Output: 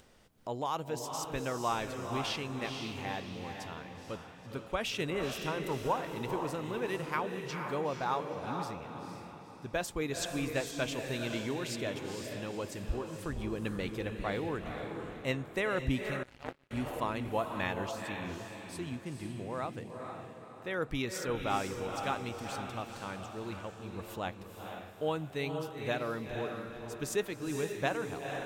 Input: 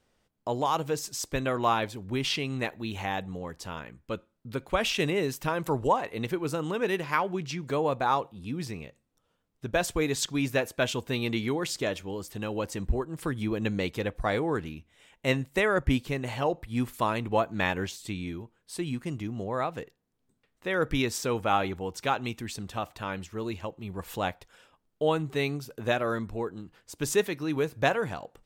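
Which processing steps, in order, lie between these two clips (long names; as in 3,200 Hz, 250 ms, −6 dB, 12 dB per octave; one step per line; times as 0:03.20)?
feedback delay with all-pass diffusion 480 ms, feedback 43%, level −5 dB
0:16.23–0:16.71: power curve on the samples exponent 3
upward compression, threshold −40 dBFS
level −7.5 dB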